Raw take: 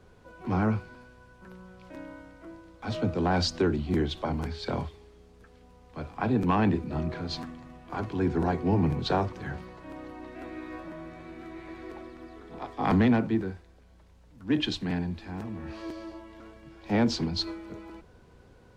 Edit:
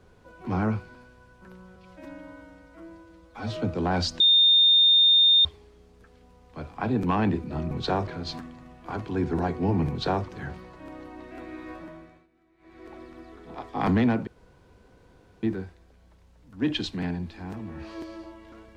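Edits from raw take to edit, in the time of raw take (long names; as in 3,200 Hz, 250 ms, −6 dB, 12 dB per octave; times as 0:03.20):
0:01.76–0:02.96: time-stretch 1.5×
0:03.60–0:04.85: beep over 3,640 Hz −14.5 dBFS
0:08.93–0:09.29: duplicate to 0:07.11
0:10.85–0:12.07: duck −23 dB, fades 0.46 s
0:13.31: splice in room tone 1.16 s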